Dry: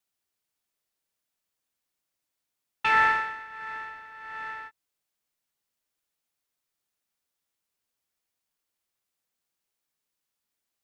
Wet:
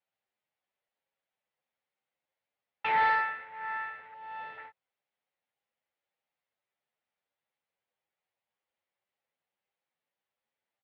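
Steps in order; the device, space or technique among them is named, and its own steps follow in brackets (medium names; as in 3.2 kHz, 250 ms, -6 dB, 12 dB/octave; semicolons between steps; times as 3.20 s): 4.13–4.58 s: high-order bell 1.6 kHz -10 dB 1.3 oct; barber-pole flanger into a guitar amplifier (endless flanger 8.9 ms +1.7 Hz; saturation -23.5 dBFS, distortion -12 dB; cabinet simulation 90–3500 Hz, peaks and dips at 290 Hz -5 dB, 540 Hz +8 dB, 800 Hz +7 dB, 2 kHz +4 dB)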